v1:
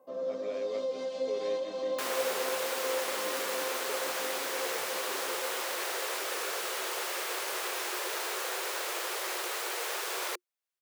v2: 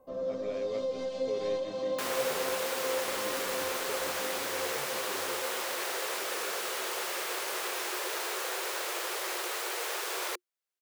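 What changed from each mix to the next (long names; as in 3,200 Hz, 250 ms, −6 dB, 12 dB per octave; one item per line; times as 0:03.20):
master: remove high-pass filter 270 Hz 12 dB per octave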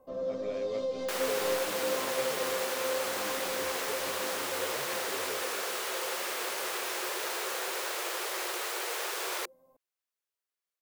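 second sound: entry −0.90 s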